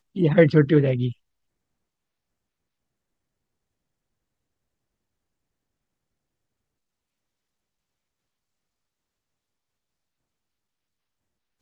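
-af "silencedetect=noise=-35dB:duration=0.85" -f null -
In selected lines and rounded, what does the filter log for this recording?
silence_start: 1.12
silence_end: 11.61 | silence_duration: 10.49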